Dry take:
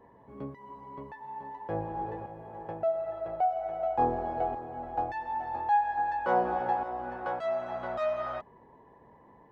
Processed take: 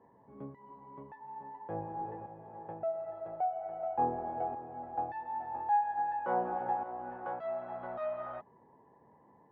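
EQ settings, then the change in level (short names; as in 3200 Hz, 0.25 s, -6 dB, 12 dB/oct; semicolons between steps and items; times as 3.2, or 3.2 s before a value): BPF 130–2000 Hz; low shelf 170 Hz +7 dB; bell 830 Hz +3.5 dB 0.26 oct; -7.0 dB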